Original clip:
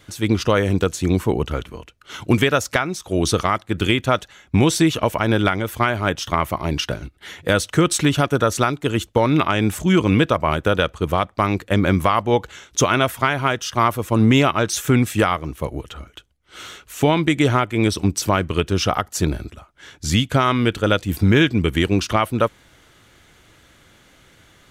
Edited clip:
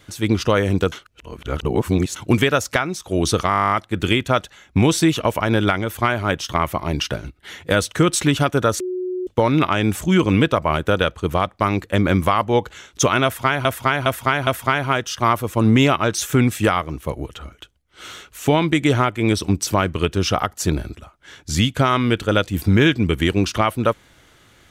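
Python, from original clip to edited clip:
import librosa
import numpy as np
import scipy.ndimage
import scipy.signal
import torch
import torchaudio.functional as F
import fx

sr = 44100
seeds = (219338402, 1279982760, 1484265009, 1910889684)

y = fx.edit(x, sr, fx.reverse_span(start_s=0.92, length_s=1.24),
    fx.stutter(start_s=3.49, slice_s=0.02, count=12),
    fx.bleep(start_s=8.58, length_s=0.47, hz=366.0, db=-22.0),
    fx.repeat(start_s=13.02, length_s=0.41, count=4), tone=tone)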